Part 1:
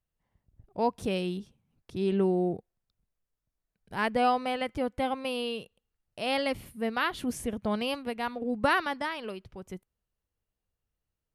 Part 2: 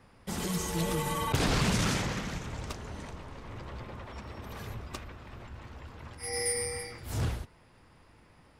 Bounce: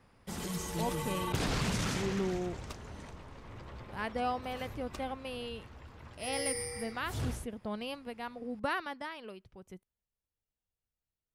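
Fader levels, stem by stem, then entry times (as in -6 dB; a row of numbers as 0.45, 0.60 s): -8.5, -5.0 dB; 0.00, 0.00 s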